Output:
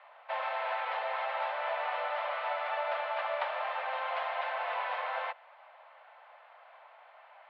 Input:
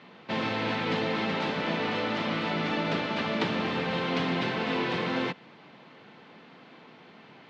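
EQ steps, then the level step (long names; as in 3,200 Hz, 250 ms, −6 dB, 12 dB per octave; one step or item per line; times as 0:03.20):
Butterworth high-pass 580 Hz 72 dB per octave
low-pass filter 1,100 Hz 6 dB per octave
high-frequency loss of the air 260 metres
+4.0 dB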